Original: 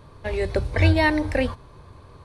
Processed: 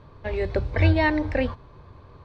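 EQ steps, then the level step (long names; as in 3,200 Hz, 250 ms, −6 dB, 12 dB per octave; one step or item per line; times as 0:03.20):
high-frequency loss of the air 150 metres
−1.0 dB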